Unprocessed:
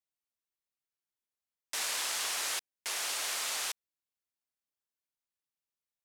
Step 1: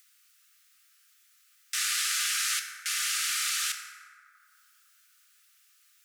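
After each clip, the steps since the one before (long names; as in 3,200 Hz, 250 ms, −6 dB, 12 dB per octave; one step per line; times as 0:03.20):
Chebyshev high-pass filter 1,200 Hz, order 10
upward compression, threshold −49 dBFS
feedback delay network reverb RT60 2.5 s, low-frequency decay 1.55×, high-frequency decay 0.35×, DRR 3 dB
level +5 dB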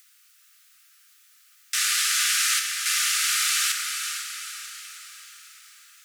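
feedback delay with all-pass diffusion 460 ms, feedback 50%, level −7 dB
level +5.5 dB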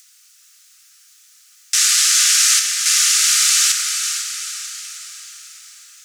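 parametric band 6,400 Hz +11 dB 1.4 octaves
level +1.5 dB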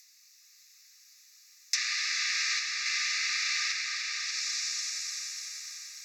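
phaser with its sweep stopped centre 2,100 Hz, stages 8
echo machine with several playback heads 294 ms, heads first and second, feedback 52%, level −9.5 dB
treble cut that deepens with the level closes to 2,900 Hz, closed at −17 dBFS
level −4.5 dB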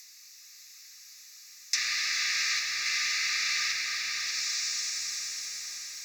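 mu-law and A-law mismatch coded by mu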